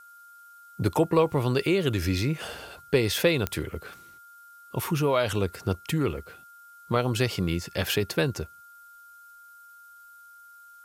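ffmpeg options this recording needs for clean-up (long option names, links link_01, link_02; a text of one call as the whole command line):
ffmpeg -i in.wav -af "adeclick=threshold=4,bandreject=frequency=1400:width=30,agate=range=-21dB:threshold=-43dB" out.wav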